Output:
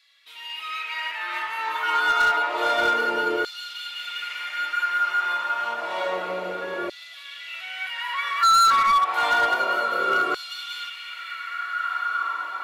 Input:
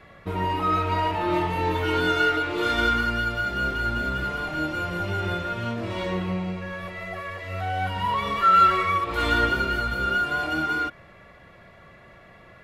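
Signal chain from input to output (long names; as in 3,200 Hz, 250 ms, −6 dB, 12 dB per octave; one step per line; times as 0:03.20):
feedback delay with all-pass diffusion 1,562 ms, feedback 54%, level −9.5 dB
auto-filter high-pass saw down 0.29 Hz 370–4,300 Hz
hard clipping −15 dBFS, distortion −6 dB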